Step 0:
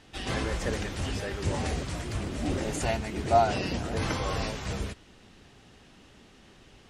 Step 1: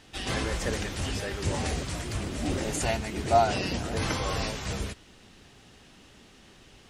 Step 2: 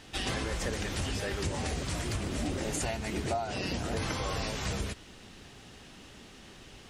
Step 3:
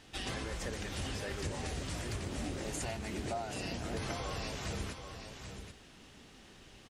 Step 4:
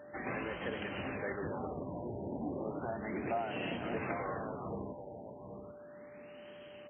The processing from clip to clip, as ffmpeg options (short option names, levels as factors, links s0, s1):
-af "lowpass=f=3500:p=1,aemphasis=mode=production:type=75kf"
-af "acompressor=threshold=0.0251:ratio=12,volume=1.41"
-af "aecho=1:1:783:0.398,volume=0.501"
-af "aeval=exprs='val(0)+0.00224*sin(2*PI*590*n/s)':c=same,highpass=170,lowpass=7800,afftfilt=real='re*lt(b*sr/1024,970*pow(3300/970,0.5+0.5*sin(2*PI*0.34*pts/sr)))':imag='im*lt(b*sr/1024,970*pow(3300/970,0.5+0.5*sin(2*PI*0.34*pts/sr)))':win_size=1024:overlap=0.75,volume=1.41"